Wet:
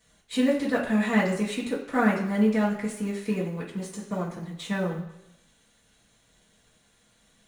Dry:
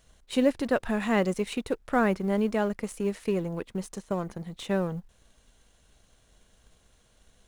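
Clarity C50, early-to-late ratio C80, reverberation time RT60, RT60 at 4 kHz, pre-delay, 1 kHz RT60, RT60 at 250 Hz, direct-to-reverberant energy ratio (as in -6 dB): 6.0 dB, 9.0 dB, 0.85 s, 0.85 s, 3 ms, 0.85 s, 0.75 s, -11.0 dB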